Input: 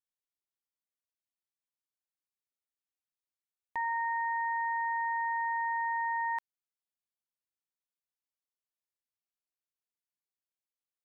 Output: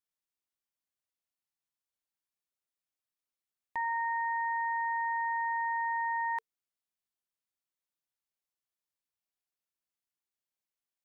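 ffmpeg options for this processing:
-af "bandreject=f=450:w=15"

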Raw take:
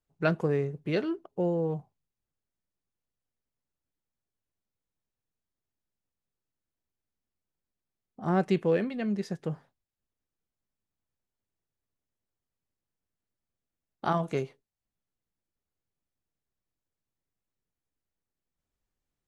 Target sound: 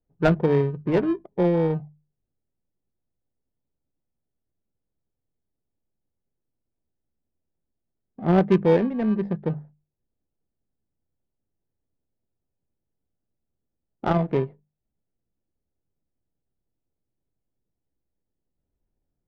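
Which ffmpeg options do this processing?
-filter_complex "[0:a]bandreject=f=1.1k:w=7.1,asplit=2[a][b];[b]acrusher=samples=32:mix=1:aa=0.000001,volume=-7dB[c];[a][c]amix=inputs=2:normalize=0,equalizer=f=6.1k:w=2.5:g=-12,adynamicsmooth=sensitivity=1:basefreq=950,bandreject=f=50:t=h:w=6,bandreject=f=100:t=h:w=6,bandreject=f=150:t=h:w=6,bandreject=f=200:t=h:w=6,volume=5.5dB"

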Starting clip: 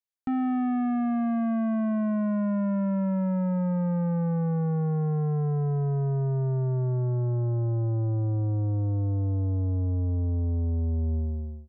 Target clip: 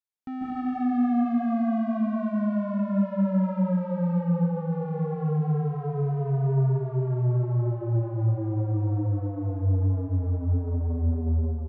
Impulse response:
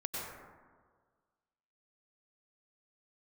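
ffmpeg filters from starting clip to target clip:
-filter_complex "[0:a]asettb=1/sr,asplit=3[a][b][c];[a]atrim=end=4.244[d];[b]atrim=start=4.24:end=4.71,asetpts=PTS-STARTPTS,afade=t=in:d=0.004:c=qsin,afade=t=out:st=0.466:d=0.004:c=qsin,lowpass=1.1k[e];[c]atrim=start=4.706[f];[d][e]acrossfade=d=0.004:c1=hsin:c2=qsin[g];[g][f]acrossfade=d=0.004:c1=qsin:c2=hsin,asplit=2[h][i];[i]asoftclip=type=tanh:threshold=-34.5dB,volume=-9dB[j];[h][j]amix=inputs=2:normalize=0,aecho=1:1:230:0.398[k];[1:a]atrim=start_sample=2205,asetrate=29106,aresample=44100[l];[k][l]afir=irnorm=-1:irlink=0,volume=-7.5dB"

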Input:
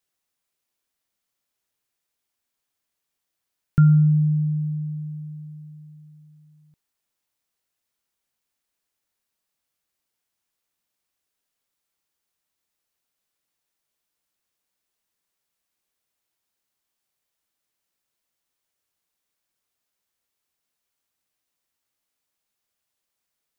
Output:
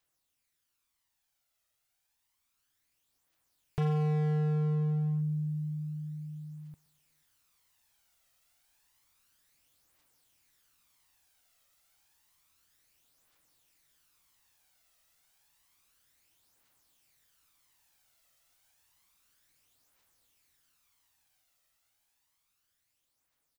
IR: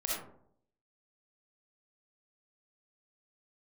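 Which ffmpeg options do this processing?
-filter_complex "[0:a]equalizer=f=200:t=o:w=0.33:g=-9,equalizer=f=400:t=o:w=0.33:g=-7,equalizer=f=630:t=o:w=0.33:g=-3,dynaudnorm=f=620:g=11:m=10dB,asplit=2[a][b];[b]alimiter=limit=-11.5dB:level=0:latency=1,volume=2dB[c];[a][c]amix=inputs=2:normalize=0,asoftclip=type=tanh:threshold=-13.5dB,aphaser=in_gain=1:out_gain=1:delay=1.6:decay=0.47:speed=0.3:type=triangular,asoftclip=type=hard:threshold=-19dB,aecho=1:1:122|244|366|488:0.0631|0.036|0.0205|0.0117,volume=-8dB"

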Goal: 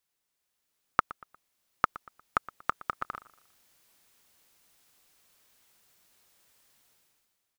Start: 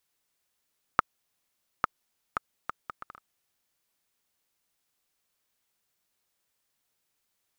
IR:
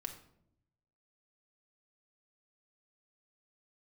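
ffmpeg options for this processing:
-filter_complex "[0:a]dynaudnorm=f=110:g=11:m=16.5dB,asplit=2[a][b];[b]adelay=118,lowpass=f=3.9k:p=1,volume=-18dB,asplit=2[c][d];[d]adelay=118,lowpass=f=3.9k:p=1,volume=0.38,asplit=2[e][f];[f]adelay=118,lowpass=f=3.9k:p=1,volume=0.38[g];[a][c][e][g]amix=inputs=4:normalize=0,volume=-4dB"

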